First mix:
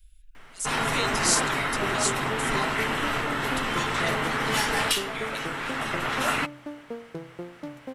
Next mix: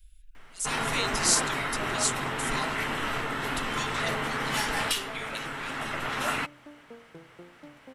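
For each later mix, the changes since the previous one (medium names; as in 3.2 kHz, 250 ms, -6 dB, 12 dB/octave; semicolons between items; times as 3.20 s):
first sound -3.5 dB; second sound -11.0 dB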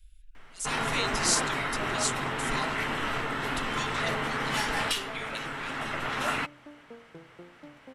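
master: add treble shelf 10 kHz -9 dB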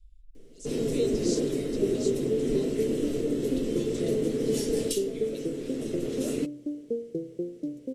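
speech: add low-pass 3.4 kHz 12 dB/octave; second sound +7.0 dB; master: add FFT filter 120 Hz 0 dB, 330 Hz +11 dB, 470 Hz +11 dB, 850 Hz -24 dB, 1.4 kHz -26 dB, 6.6 kHz +3 dB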